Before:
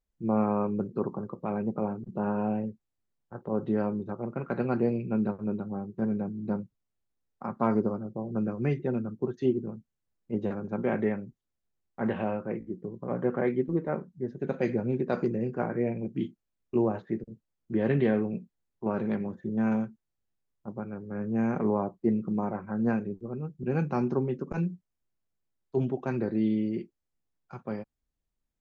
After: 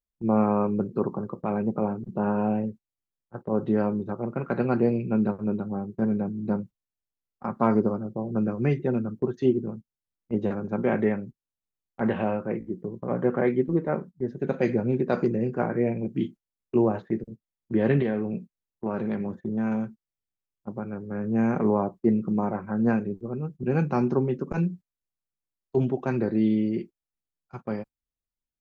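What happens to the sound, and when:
18.02–21.27 compressor 2:1, threshold -30 dBFS
whole clip: gate -43 dBFS, range -14 dB; gain +4 dB

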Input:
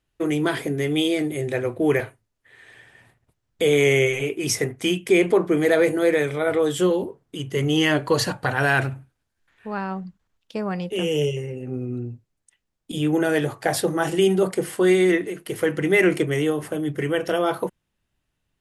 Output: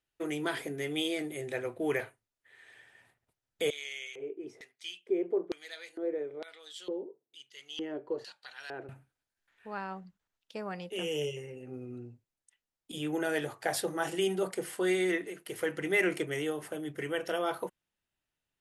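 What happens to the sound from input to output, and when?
3.7–8.89 LFO band-pass square 1.1 Hz 390–4200 Hz
whole clip: low shelf 290 Hz -11 dB; notch 1100 Hz, Q 20; gain -7.5 dB

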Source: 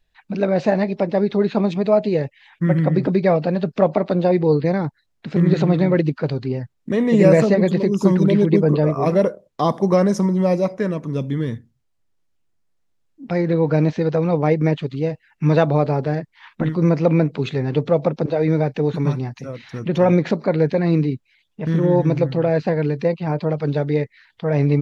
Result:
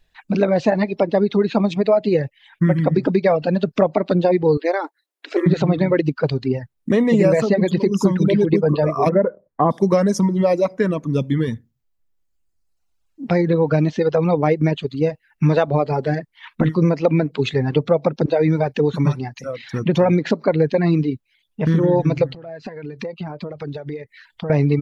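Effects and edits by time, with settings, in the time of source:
4.57–5.46 brick-wall FIR high-pass 280 Hz
9.09–9.71 steep low-pass 2000 Hz
22.32–24.5 compressor 12:1, threshold -29 dBFS
whole clip: reverb removal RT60 1.7 s; compressor 3:1, threshold -20 dBFS; gain +6.5 dB

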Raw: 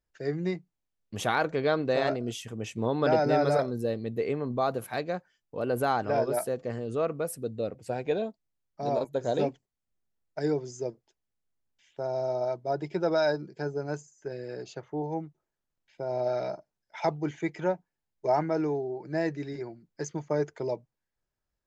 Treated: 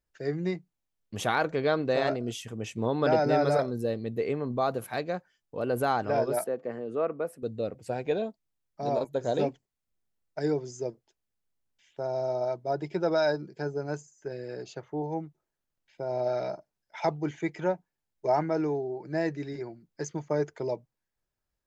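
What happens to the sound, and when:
6.44–7.43 three-band isolator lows -17 dB, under 190 Hz, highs -15 dB, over 2500 Hz

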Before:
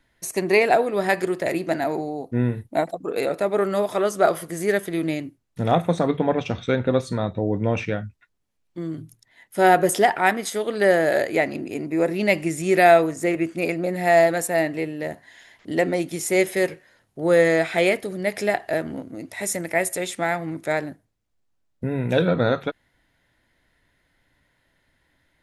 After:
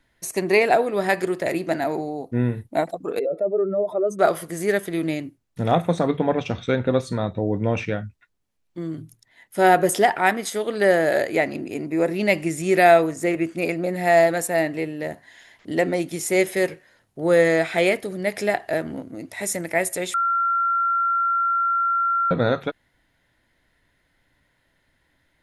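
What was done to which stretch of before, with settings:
3.19–4.19 spectral contrast raised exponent 2.2
20.14–22.31 bleep 1370 Hz -18 dBFS

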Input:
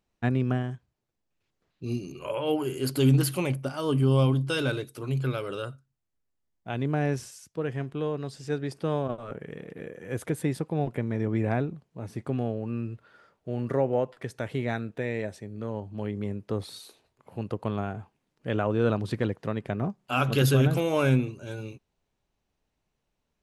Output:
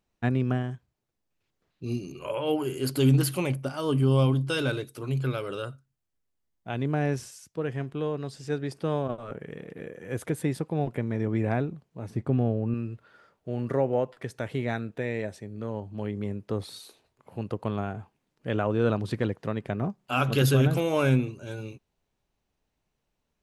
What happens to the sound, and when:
12.1–12.74 tilt -2 dB/oct

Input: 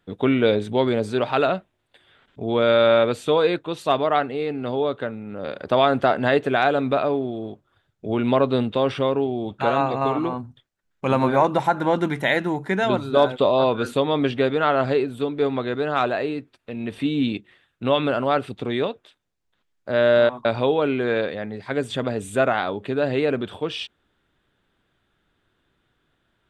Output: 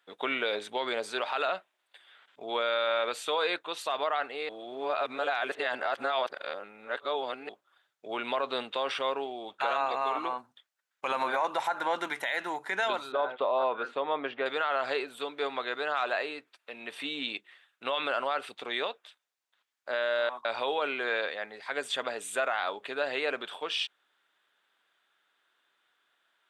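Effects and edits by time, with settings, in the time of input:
4.49–7.49 reverse
13.12–14.46 Bessel low-pass 1500 Hz
whole clip: HPF 850 Hz 12 dB/oct; limiter -19 dBFS

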